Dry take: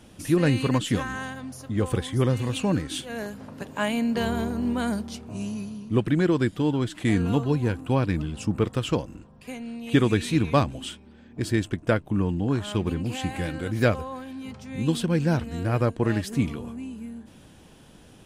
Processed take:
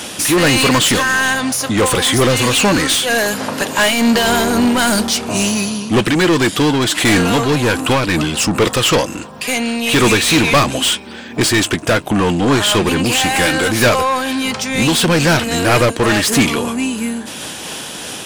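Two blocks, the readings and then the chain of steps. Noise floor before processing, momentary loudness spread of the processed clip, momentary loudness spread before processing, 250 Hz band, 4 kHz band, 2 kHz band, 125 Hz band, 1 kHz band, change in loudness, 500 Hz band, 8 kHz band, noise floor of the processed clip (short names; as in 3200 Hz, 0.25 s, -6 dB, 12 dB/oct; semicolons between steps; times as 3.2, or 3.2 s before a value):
-51 dBFS, 8 LU, 14 LU, +9.5 dB, +21.0 dB, +18.5 dB, +5.5 dB, +15.5 dB, +12.0 dB, +11.5 dB, +23.5 dB, -29 dBFS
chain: high shelf 3700 Hz +11 dB; overdrive pedal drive 31 dB, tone 6100 Hz, clips at -6 dBFS; noise-modulated level, depth 50%; gain +3.5 dB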